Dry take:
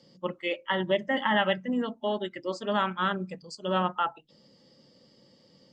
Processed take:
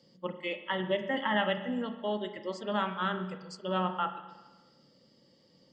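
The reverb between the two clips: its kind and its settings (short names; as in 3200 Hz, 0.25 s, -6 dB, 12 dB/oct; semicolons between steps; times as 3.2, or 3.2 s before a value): spring tank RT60 1.2 s, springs 33/43 ms, chirp 30 ms, DRR 8.5 dB; gain -4.5 dB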